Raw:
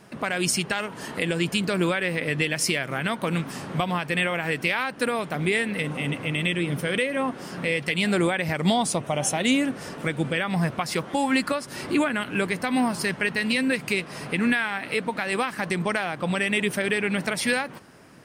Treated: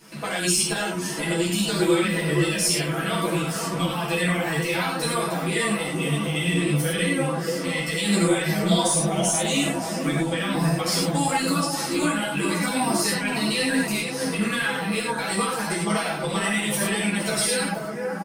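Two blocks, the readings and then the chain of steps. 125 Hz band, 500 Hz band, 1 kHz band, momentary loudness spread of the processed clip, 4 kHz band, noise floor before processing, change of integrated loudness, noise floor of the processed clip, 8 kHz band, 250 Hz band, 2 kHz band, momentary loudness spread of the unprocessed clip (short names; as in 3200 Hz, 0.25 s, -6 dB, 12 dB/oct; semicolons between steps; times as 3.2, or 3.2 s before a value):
+3.5 dB, +1.5 dB, +2.0 dB, 5 LU, +3.5 dB, -41 dBFS, +2.0 dB, -30 dBFS, +7.5 dB, +2.0 dB, -1.0 dB, 5 LU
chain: bin magnitudes rounded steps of 15 dB; high shelf 3100 Hz +11.5 dB; comb 6.1 ms; analogue delay 0.481 s, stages 4096, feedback 57%, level -5 dB; in parallel at -12 dB: one-sided clip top -20.5 dBFS; on the sum: limiter -9.5 dBFS, peak gain reduction 8.5 dB; non-linear reverb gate 0.13 s flat, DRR -3 dB; dynamic EQ 2200 Hz, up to -6 dB, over -30 dBFS, Q 1.4; ensemble effect; gain -3 dB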